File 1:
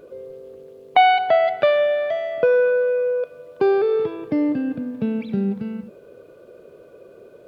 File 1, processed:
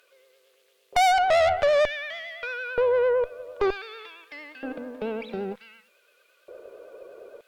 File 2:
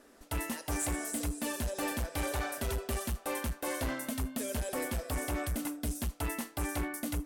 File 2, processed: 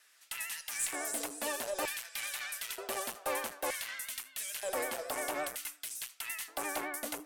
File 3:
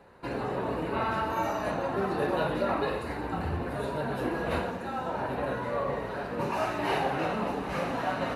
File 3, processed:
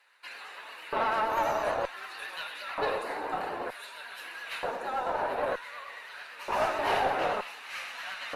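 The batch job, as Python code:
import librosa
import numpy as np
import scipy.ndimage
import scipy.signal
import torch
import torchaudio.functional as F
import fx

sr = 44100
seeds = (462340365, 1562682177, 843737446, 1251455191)

y = fx.vibrato(x, sr, rate_hz=8.9, depth_cents=56.0)
y = fx.filter_lfo_highpass(y, sr, shape='square', hz=0.54, low_hz=550.0, high_hz=2200.0, q=1.1)
y = fx.tube_stage(y, sr, drive_db=21.0, bias=0.5)
y = y * librosa.db_to_amplitude(3.5)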